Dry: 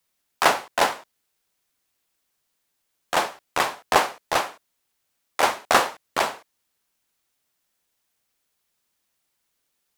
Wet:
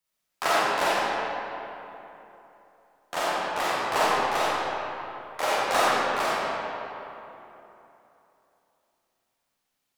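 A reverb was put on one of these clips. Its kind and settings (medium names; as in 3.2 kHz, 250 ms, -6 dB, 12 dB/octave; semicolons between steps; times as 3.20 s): algorithmic reverb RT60 3.2 s, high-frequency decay 0.6×, pre-delay 5 ms, DRR -9 dB; trim -10.5 dB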